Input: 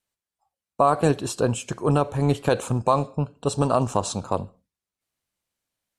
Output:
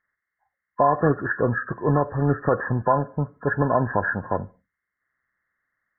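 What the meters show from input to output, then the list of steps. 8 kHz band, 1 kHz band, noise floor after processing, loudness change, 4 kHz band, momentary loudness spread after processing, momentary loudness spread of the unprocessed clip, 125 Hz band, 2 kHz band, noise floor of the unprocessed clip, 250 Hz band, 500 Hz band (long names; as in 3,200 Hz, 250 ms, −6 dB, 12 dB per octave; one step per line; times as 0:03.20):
below −40 dB, +0.5 dB, −84 dBFS, +0.5 dB, below −40 dB, 7 LU, 7 LU, 0.0 dB, +9.5 dB, below −85 dBFS, 0.0 dB, 0.0 dB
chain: hearing-aid frequency compression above 1,000 Hz 4 to 1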